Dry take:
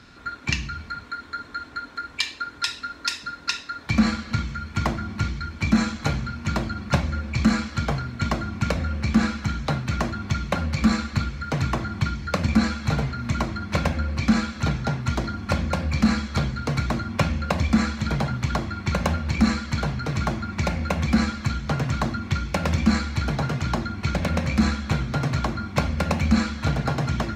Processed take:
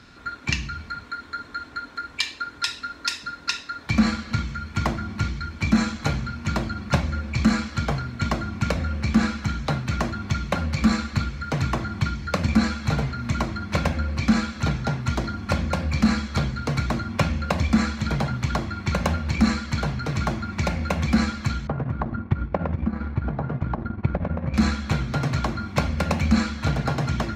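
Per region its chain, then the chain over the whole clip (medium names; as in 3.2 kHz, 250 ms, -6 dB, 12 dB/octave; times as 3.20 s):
21.67–24.54 s: low-pass 1.2 kHz + compression, threshold -24 dBFS + transient shaper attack +12 dB, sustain -9 dB
whole clip: none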